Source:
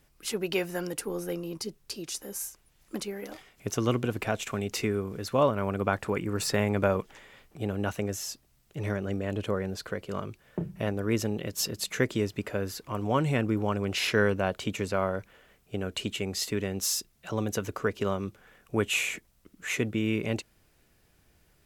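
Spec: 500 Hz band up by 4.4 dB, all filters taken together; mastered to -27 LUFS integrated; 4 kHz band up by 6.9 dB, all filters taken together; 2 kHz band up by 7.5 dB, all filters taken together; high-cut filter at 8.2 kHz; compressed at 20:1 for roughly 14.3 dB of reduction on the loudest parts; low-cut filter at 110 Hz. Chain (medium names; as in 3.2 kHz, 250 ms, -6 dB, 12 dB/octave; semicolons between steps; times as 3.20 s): high-pass 110 Hz; low-pass 8.2 kHz; peaking EQ 500 Hz +5 dB; peaking EQ 2 kHz +7.5 dB; peaking EQ 4 kHz +7 dB; compression 20:1, threshold -29 dBFS; trim +8 dB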